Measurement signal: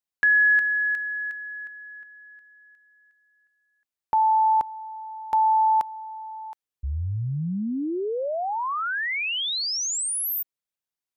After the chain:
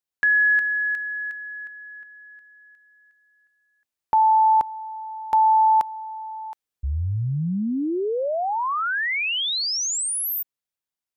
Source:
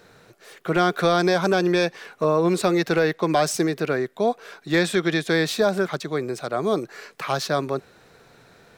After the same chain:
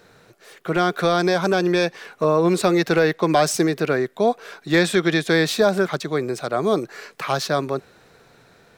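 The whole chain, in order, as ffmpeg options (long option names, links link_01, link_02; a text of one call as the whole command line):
ffmpeg -i in.wav -af "dynaudnorm=framelen=820:gausssize=5:maxgain=3dB" out.wav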